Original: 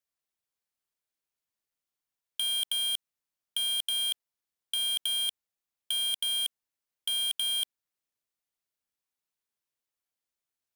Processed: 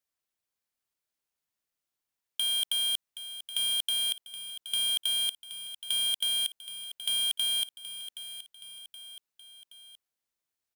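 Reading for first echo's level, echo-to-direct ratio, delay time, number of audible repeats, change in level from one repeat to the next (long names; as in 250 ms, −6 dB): −12.5 dB, −11.0 dB, 773 ms, 3, −5.5 dB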